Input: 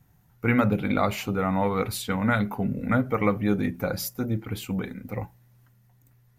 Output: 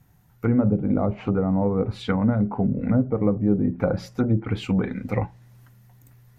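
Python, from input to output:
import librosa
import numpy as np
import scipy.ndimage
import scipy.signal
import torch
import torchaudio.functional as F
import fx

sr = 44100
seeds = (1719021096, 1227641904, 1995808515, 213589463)

p1 = fx.env_lowpass_down(x, sr, base_hz=510.0, full_db=-21.5)
p2 = fx.rider(p1, sr, range_db=5, speed_s=0.5)
p3 = p1 + (p2 * 10.0 ** (0.5 / 20.0))
y = p3 * 10.0 ** (-1.5 / 20.0)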